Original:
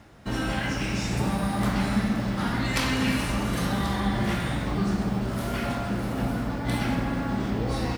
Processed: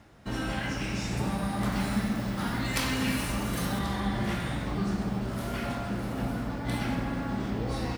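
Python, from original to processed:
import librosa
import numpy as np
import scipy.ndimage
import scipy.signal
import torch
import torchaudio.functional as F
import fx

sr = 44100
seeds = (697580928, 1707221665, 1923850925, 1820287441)

y = fx.high_shelf(x, sr, hz=10000.0, db=10.5, at=(1.72, 3.79))
y = y * 10.0 ** (-4.0 / 20.0)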